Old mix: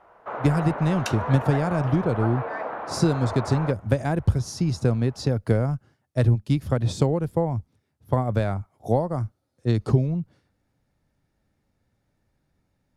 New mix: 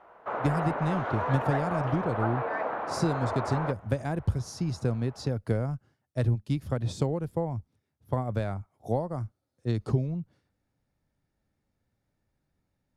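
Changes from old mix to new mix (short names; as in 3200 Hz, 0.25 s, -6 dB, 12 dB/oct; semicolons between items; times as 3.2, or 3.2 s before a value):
speech -6.5 dB; second sound: muted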